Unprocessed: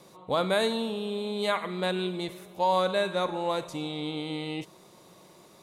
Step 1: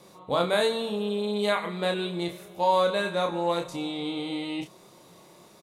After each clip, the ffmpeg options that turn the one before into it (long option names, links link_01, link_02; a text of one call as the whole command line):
ffmpeg -i in.wav -filter_complex "[0:a]asplit=2[link_01][link_02];[link_02]adelay=29,volume=-4dB[link_03];[link_01][link_03]amix=inputs=2:normalize=0" out.wav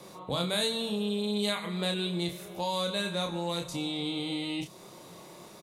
ffmpeg -i in.wav -filter_complex "[0:a]acrossover=split=200|3000[link_01][link_02][link_03];[link_02]acompressor=threshold=-43dB:ratio=2.5[link_04];[link_01][link_04][link_03]amix=inputs=3:normalize=0,volume=4dB" out.wav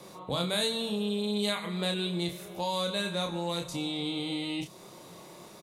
ffmpeg -i in.wav -af anull out.wav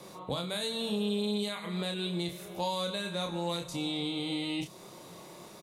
ffmpeg -i in.wav -af "alimiter=limit=-22dB:level=0:latency=1:release=300" out.wav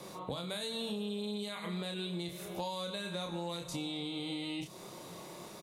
ffmpeg -i in.wav -af "acompressor=threshold=-36dB:ratio=6,volume=1dB" out.wav